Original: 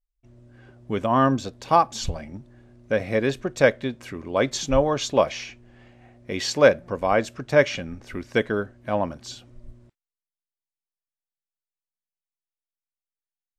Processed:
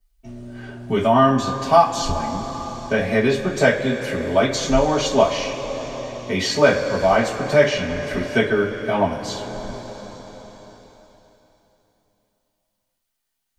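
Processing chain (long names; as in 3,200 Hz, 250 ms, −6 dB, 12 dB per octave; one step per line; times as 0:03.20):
coupled-rooms reverb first 0.25 s, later 3.5 s, from −20 dB, DRR −10 dB
multiband upward and downward compressor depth 40%
level −5.5 dB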